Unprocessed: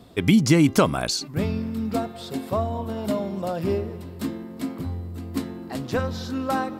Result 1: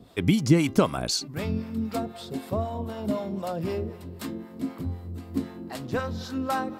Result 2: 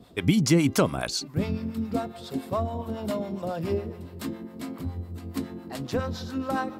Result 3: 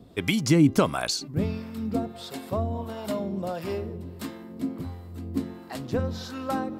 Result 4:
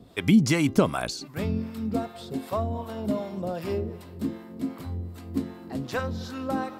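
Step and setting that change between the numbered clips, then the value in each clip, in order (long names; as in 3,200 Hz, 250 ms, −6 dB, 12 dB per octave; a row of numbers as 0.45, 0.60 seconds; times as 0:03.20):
two-band tremolo in antiphase, speed: 3.9, 7.2, 1.5, 2.6 Hertz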